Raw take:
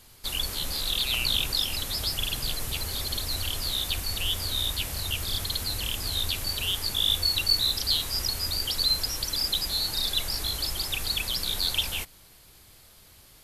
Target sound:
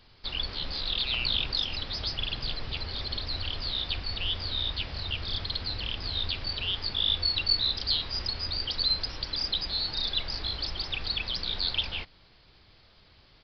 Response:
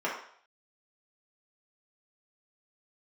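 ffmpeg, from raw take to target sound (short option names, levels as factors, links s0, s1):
-af "aresample=11025,aresample=44100,volume=0.794"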